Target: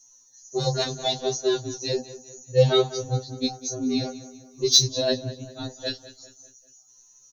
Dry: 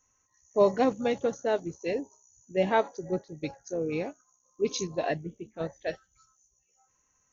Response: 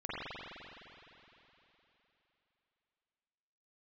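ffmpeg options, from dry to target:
-filter_complex "[0:a]afreqshift=-56,highshelf=frequency=3100:width_type=q:width=3:gain=10.5,asplit=2[link_01][link_02];[link_02]adelay=198,lowpass=frequency=3900:poles=1,volume=-15dB,asplit=2[link_03][link_04];[link_04]adelay=198,lowpass=frequency=3900:poles=1,volume=0.47,asplit=2[link_05][link_06];[link_06]adelay=198,lowpass=frequency=3900:poles=1,volume=0.47,asplit=2[link_07][link_08];[link_08]adelay=198,lowpass=frequency=3900:poles=1,volume=0.47[link_09];[link_03][link_05][link_07][link_09]amix=inputs=4:normalize=0[link_10];[link_01][link_10]amix=inputs=2:normalize=0,acontrast=59,afftfilt=real='re*2.45*eq(mod(b,6),0)':imag='im*2.45*eq(mod(b,6),0)':win_size=2048:overlap=0.75"

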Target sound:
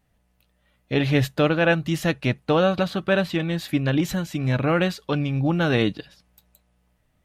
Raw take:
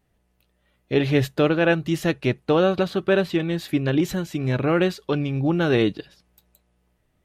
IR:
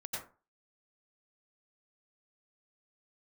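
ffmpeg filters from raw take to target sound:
-af "equalizer=frequency=380:width=3.6:gain=-9.5,volume=1.5dB"

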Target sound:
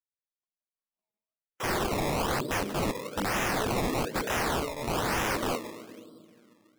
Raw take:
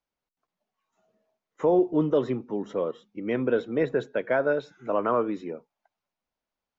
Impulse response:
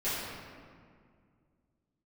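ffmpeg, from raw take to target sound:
-filter_complex "[0:a]agate=range=-34dB:threshold=-51dB:ratio=16:detection=peak,asplit=2[link_01][link_02];[1:a]atrim=start_sample=2205[link_03];[link_02][link_03]afir=irnorm=-1:irlink=0,volume=-23.5dB[link_04];[link_01][link_04]amix=inputs=2:normalize=0,asoftclip=type=tanh:threshold=-17.5dB,asettb=1/sr,asplit=3[link_05][link_06][link_07];[link_05]atrim=end=3.044[link_08];[link_06]atrim=start=3.04:end=4.02,asetpts=PTS-STARTPTS,afade=type=in:duration=0.004:curve=qsin,afade=type=out:start_time=0.976:duration=0.004:curve=qsin,asplit=2[link_09][link_10];[link_10]adelay=19,volume=-5.5dB[link_11];[link_09][link_11]amix=inputs=2:normalize=0,atrim=end_sample=43218[link_12];[link_07]atrim=start=4.016[link_13];[link_08][link_12]acrossfade=duration=0.004:curve1=hsin:curve2=qsin[link_14];[link_14][link_13]acrossfade=duration=0.004:curve1=qsin:curve2=hsin,acrusher=samples=20:mix=1:aa=0.000001:lfo=1:lforange=20:lforate=1.1,acontrast=78,aeval=exprs='(mod(15*val(0)+1,2)-1)/15':channel_layout=same"

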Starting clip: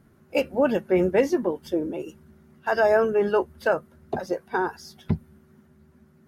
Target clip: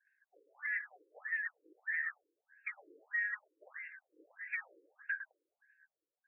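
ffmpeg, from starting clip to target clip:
ffmpeg -i in.wav -filter_complex "[0:a]afftfilt=real='real(if(lt(b,272),68*(eq(floor(b/68),0)*1+eq(floor(b/68),1)*0+eq(floor(b/68),2)*3+eq(floor(b/68),3)*2)+mod(b,68),b),0)':imag='imag(if(lt(b,272),68*(eq(floor(b/68),0)*1+eq(floor(b/68),1)*0+eq(floor(b/68),2)*3+eq(floor(b/68),3)*2)+mod(b,68),b),0)':win_size=2048:overlap=0.75,agate=range=-33dB:threshold=-43dB:ratio=3:detection=peak,bandreject=frequency=50:width_type=h:width=6,bandreject=frequency=100:width_type=h:width=6,bandreject=frequency=150:width_type=h:width=6,bandreject=frequency=200:width_type=h:width=6,bandreject=frequency=250:width_type=h:width=6,acompressor=threshold=-32dB:ratio=8,highshelf=frequency=8200:gain=3.5,asoftclip=type=tanh:threshold=-34dB,asplit=2[link_01][link_02];[link_02]adelay=107,lowpass=frequency=1400:poles=1,volume=-6dB,asplit=2[link_03][link_04];[link_04]adelay=107,lowpass=frequency=1400:poles=1,volume=0.39,asplit=2[link_05][link_06];[link_06]adelay=107,lowpass=frequency=1400:poles=1,volume=0.39,asplit=2[link_07][link_08];[link_08]adelay=107,lowpass=frequency=1400:poles=1,volume=0.39,asplit=2[link_09][link_10];[link_10]adelay=107,lowpass=frequency=1400:poles=1,volume=0.39[link_11];[link_01][link_03][link_05][link_07][link_09][link_11]amix=inputs=6:normalize=0,afftfilt=real='re*between(b*sr/1024,370*pow(2000/370,0.5+0.5*sin(2*PI*1.6*pts/sr))/1.41,370*pow(2000/370,0.5+0.5*sin(2*PI*1.6*pts/sr))*1.41)':imag='im*between(b*sr/1024,370*pow(2000/370,0.5+0.5*sin(2*PI*1.6*pts/sr))/1.41,370*pow(2000/370,0.5+0.5*sin(2*PI*1.6*pts/sr))*1.41)':win_size=1024:overlap=0.75,volume=3.5dB" out.wav

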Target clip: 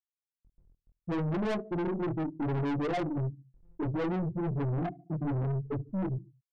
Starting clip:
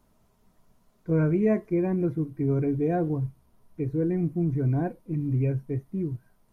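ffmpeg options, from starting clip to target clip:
ffmpeg -i in.wav -filter_complex "[0:a]aeval=exprs='val(0)+0.5*0.0316*sgn(val(0))':channel_layout=same,bandreject=frequency=50:width_type=h:width=6,bandreject=frequency=100:width_type=h:width=6,bandreject=frequency=150:width_type=h:width=6,bandreject=frequency=200:width_type=h:width=6,bandreject=frequency=250:width_type=h:width=6,bandreject=frequency=300:width_type=h:width=6,bandreject=frequency=350:width_type=h:width=6,bandreject=frequency=400:width_type=h:width=6,bandreject=frequency=450:width_type=h:width=6,afftfilt=real='re*gte(hypot(re,im),0.355)':imag='im*gte(hypot(re,im),0.355)':win_size=1024:overlap=0.75,highpass=frequency=180:poles=1,highshelf=frequency=2200:gain=9.5,asplit=2[link_01][link_02];[link_02]acompressor=threshold=-35dB:ratio=4,volume=-1dB[link_03];[link_01][link_03]amix=inputs=2:normalize=0,flanger=delay=20:depth=5.5:speed=0.68,adynamicsmooth=sensitivity=6:basefreq=1700,asplit=2[link_04][link_05];[link_05]adelay=73,lowpass=frequency=1100:poles=1,volume=-23dB,asplit=2[link_06][link_07];[link_07]adelay=73,lowpass=frequency=1100:poles=1,volume=0.45,asplit=2[link_08][link_09];[link_09]adelay=73,lowpass=frequency=1100:poles=1,volume=0.45[link_10];[link_04][link_06][link_08][link_10]amix=inputs=4:normalize=0,aeval=exprs='(tanh(63.1*val(0)+0.2)-tanh(0.2))/63.1':channel_layout=same,volume=7dB" out.wav

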